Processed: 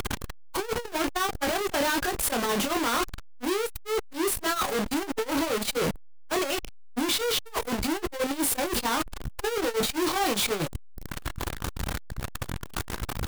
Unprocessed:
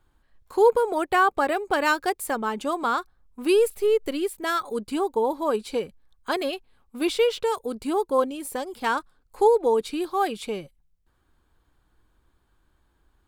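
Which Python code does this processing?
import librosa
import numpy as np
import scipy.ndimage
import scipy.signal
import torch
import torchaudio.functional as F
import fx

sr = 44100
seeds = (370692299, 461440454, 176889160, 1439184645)

y = np.sign(x) * np.sqrt(np.mean(np.square(x)))
y = fx.doubler(y, sr, ms=25.0, db=-5.5)
y = fx.transformer_sat(y, sr, knee_hz=89.0)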